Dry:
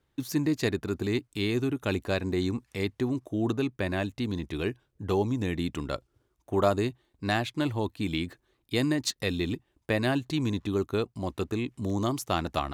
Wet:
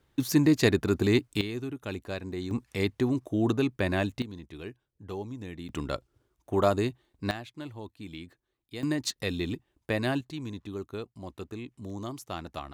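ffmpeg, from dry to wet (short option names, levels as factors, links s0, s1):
-af "asetnsamples=n=441:p=0,asendcmd='1.41 volume volume -7dB;2.51 volume volume 2dB;4.22 volume volume -10.5dB;5.69 volume volume 0dB;7.31 volume volume -12dB;8.83 volume volume -2dB;10.21 volume volume -9dB',volume=1.78"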